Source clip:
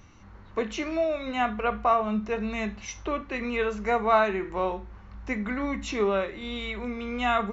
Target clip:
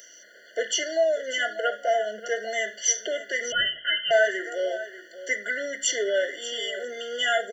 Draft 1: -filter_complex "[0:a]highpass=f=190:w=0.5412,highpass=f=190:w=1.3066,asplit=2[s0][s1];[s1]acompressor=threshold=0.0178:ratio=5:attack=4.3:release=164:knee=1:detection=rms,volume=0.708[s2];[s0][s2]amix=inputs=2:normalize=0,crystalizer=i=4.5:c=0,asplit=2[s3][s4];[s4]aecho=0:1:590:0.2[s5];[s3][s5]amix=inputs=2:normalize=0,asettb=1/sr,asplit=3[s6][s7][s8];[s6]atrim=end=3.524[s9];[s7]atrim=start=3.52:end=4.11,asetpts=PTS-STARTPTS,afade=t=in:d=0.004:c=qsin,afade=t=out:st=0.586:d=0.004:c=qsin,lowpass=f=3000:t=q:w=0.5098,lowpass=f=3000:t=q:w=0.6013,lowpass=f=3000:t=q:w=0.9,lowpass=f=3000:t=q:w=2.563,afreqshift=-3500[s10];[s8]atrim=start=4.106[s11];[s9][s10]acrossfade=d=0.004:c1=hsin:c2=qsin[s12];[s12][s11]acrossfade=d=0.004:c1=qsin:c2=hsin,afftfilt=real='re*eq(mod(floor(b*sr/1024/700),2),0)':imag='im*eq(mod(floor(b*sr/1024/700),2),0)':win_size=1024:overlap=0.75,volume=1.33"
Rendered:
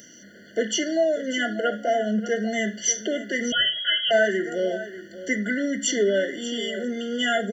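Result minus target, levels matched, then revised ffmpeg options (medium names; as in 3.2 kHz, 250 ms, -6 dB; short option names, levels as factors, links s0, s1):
250 Hz band +16.0 dB
-filter_complex "[0:a]highpass=f=490:w=0.5412,highpass=f=490:w=1.3066,asplit=2[s0][s1];[s1]acompressor=threshold=0.0178:ratio=5:attack=4.3:release=164:knee=1:detection=rms,volume=0.708[s2];[s0][s2]amix=inputs=2:normalize=0,crystalizer=i=4.5:c=0,asplit=2[s3][s4];[s4]aecho=0:1:590:0.2[s5];[s3][s5]amix=inputs=2:normalize=0,asettb=1/sr,asplit=3[s6][s7][s8];[s6]atrim=end=3.524[s9];[s7]atrim=start=3.52:end=4.11,asetpts=PTS-STARTPTS,afade=t=in:d=0.004:c=qsin,afade=t=out:st=0.586:d=0.004:c=qsin,lowpass=f=3000:t=q:w=0.5098,lowpass=f=3000:t=q:w=0.6013,lowpass=f=3000:t=q:w=0.9,lowpass=f=3000:t=q:w=2.563,afreqshift=-3500[s10];[s8]atrim=start=4.106[s11];[s9][s10]acrossfade=d=0.004:c1=hsin:c2=qsin[s12];[s12][s11]acrossfade=d=0.004:c1=qsin:c2=hsin,afftfilt=real='re*eq(mod(floor(b*sr/1024/700),2),0)':imag='im*eq(mod(floor(b*sr/1024/700),2),0)':win_size=1024:overlap=0.75,volume=1.33"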